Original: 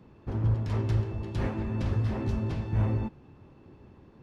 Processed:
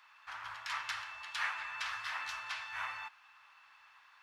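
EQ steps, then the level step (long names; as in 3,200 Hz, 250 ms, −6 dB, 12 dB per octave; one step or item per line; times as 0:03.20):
inverse Chebyshev high-pass filter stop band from 470 Hz, stop band 50 dB
high-shelf EQ 4,300 Hz −5 dB
+10.5 dB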